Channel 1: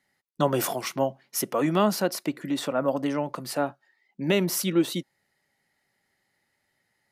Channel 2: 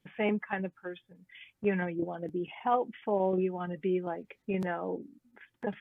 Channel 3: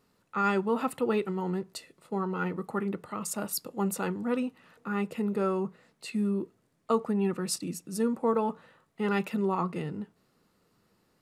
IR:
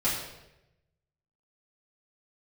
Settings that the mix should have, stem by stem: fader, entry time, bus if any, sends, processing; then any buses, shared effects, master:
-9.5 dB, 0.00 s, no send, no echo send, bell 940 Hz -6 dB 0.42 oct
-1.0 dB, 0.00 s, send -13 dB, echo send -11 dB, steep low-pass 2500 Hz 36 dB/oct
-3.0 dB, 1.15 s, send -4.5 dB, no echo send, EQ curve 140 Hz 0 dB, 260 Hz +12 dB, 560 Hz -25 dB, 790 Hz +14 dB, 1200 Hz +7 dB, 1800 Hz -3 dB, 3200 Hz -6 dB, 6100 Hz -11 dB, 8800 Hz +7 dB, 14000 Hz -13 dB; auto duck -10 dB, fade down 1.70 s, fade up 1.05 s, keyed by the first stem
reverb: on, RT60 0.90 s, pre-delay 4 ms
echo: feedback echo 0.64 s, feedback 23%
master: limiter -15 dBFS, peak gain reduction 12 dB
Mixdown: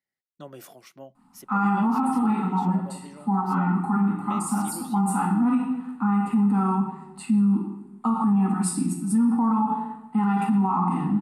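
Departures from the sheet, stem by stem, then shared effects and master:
stem 1 -9.5 dB -> -18.0 dB; stem 2: muted

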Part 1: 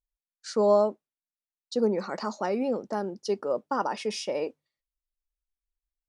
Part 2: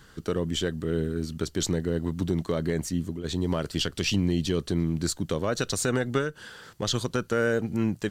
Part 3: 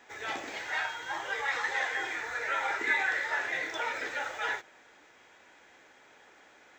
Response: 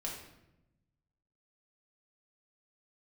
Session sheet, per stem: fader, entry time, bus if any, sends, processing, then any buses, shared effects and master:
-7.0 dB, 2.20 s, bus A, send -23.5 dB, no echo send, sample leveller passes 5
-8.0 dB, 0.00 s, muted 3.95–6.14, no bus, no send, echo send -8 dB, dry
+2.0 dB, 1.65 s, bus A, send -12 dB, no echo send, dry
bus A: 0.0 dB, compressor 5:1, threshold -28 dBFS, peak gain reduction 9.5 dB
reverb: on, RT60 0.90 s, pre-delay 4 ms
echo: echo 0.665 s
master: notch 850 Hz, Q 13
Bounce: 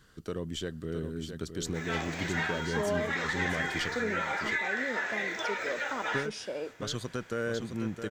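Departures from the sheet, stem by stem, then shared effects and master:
stem 1: missing sample leveller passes 5; stem 3: send off

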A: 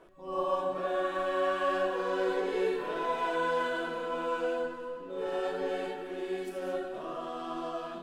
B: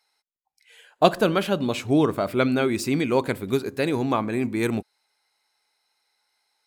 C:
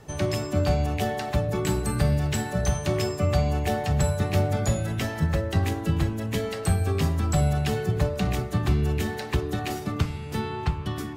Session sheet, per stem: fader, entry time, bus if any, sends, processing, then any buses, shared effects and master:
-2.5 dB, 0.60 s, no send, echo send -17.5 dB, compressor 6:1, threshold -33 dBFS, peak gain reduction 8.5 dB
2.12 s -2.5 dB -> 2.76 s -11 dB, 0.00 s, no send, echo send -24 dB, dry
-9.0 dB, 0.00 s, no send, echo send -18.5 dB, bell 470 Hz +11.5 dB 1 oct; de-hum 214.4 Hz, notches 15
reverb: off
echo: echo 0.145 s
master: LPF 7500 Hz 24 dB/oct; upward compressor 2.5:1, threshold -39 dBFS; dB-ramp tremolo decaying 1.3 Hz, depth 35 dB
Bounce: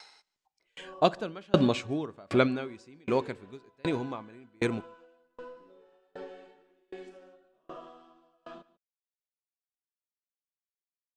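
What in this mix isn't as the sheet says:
stem B -2.5 dB -> +6.5 dB; stem C: muted

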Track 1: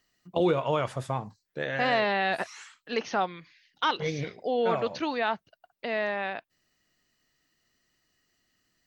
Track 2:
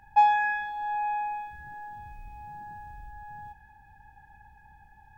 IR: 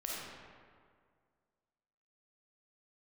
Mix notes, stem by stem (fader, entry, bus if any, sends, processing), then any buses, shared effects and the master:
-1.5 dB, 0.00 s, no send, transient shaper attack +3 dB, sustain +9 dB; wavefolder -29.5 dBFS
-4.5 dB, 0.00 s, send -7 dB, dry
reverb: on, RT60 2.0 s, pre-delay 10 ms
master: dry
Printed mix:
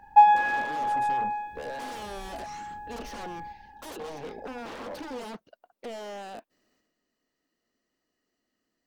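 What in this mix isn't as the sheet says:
stem 1 -1.5 dB -> -11.5 dB; master: extra graphic EQ 125/250/500/1000 Hz -5/+10/+10/+5 dB

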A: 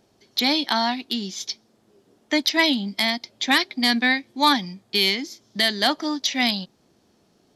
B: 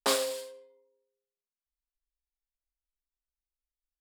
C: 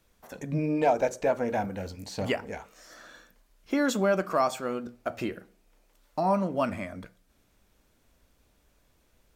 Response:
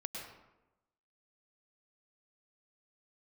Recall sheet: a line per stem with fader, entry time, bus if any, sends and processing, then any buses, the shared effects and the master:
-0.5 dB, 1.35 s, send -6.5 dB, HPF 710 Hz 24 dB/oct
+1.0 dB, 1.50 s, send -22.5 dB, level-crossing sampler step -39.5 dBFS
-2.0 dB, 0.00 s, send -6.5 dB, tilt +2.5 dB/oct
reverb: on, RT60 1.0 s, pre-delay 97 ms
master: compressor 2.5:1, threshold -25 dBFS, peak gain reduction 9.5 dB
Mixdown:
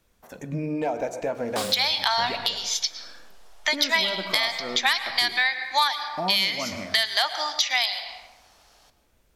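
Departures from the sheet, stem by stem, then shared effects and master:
stem A -0.5 dB -> +8.0 dB; stem C: missing tilt +2.5 dB/oct

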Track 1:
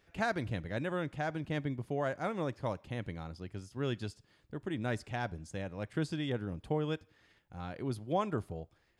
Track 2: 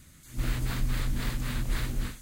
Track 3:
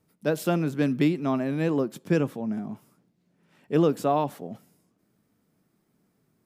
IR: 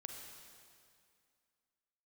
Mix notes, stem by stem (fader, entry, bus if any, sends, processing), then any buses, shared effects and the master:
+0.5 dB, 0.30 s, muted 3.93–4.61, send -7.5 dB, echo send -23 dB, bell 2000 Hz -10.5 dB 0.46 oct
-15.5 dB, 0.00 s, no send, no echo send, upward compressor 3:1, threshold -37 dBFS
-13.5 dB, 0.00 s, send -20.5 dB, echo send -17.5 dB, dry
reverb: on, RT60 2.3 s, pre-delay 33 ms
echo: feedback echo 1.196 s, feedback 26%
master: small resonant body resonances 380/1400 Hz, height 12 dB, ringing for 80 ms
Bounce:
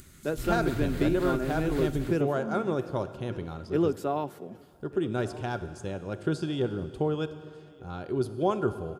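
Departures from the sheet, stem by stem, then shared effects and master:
stem 2 -15.5 dB -> -7.5 dB; stem 3 -13.5 dB -> -7.5 dB; reverb return +6.5 dB

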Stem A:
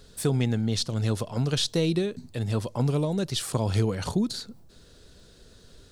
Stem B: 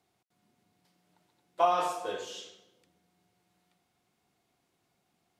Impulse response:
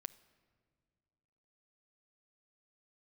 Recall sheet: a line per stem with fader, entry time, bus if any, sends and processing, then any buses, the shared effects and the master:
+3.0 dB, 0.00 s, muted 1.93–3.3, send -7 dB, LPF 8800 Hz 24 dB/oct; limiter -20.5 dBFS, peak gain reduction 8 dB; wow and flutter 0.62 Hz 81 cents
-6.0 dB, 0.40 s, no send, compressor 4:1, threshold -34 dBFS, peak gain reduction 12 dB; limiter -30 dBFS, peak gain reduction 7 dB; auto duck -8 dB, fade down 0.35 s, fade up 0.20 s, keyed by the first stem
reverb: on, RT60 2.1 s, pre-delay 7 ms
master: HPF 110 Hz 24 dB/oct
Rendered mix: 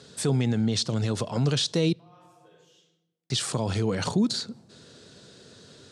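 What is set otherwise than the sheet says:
stem A: missing wow and flutter 0.62 Hz 81 cents; stem B -6.0 dB -> -17.5 dB

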